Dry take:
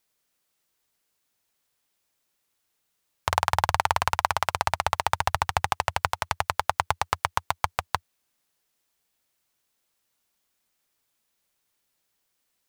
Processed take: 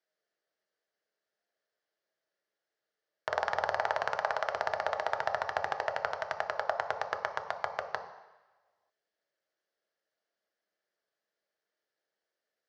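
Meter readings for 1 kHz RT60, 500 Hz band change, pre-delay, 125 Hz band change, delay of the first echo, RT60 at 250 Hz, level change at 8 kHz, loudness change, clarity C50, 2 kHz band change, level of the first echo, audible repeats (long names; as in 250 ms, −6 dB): 1.2 s, +1.0 dB, 4 ms, −21.0 dB, no echo audible, 1.0 s, −19.5 dB, −7.0 dB, 9.0 dB, −4.5 dB, no echo audible, no echo audible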